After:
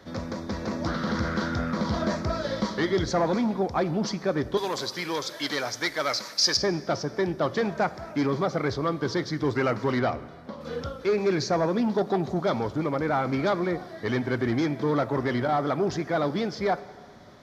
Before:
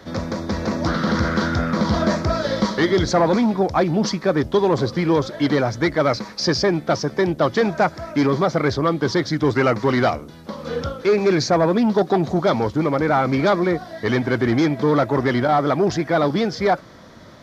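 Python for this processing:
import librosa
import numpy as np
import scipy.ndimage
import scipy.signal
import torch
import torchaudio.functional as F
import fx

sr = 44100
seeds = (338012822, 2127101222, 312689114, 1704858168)

y = fx.tilt_eq(x, sr, slope=4.5, at=(4.57, 6.57))
y = fx.lowpass(y, sr, hz=3200.0, slope=6, at=(9.99, 10.61))
y = fx.rev_plate(y, sr, seeds[0], rt60_s=1.8, hf_ratio=0.8, predelay_ms=0, drr_db=15.0)
y = y * 10.0 ** (-7.5 / 20.0)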